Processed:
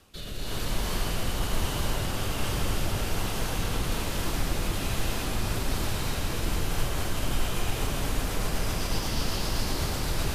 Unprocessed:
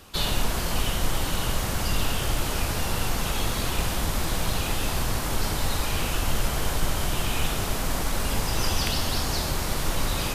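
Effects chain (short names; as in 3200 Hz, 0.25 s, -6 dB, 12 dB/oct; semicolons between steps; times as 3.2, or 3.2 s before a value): limiter -18.5 dBFS, peak gain reduction 8 dB; rotary speaker horn 1.2 Hz, later 8 Hz, at 6.4; reverb RT60 5.4 s, pre-delay 0.192 s, DRR -7 dB; gain -6 dB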